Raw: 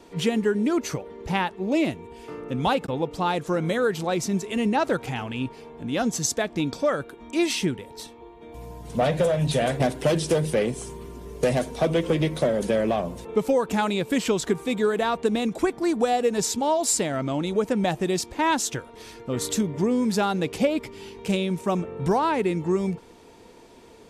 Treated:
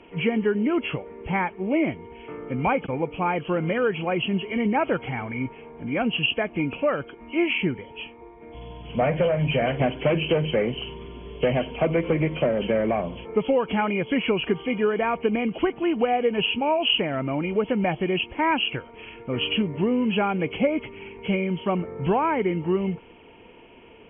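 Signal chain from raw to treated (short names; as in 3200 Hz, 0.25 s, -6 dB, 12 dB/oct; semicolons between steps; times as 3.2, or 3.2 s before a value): nonlinear frequency compression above 2100 Hz 4:1; treble ducked by the level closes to 2900 Hz, closed at -18 dBFS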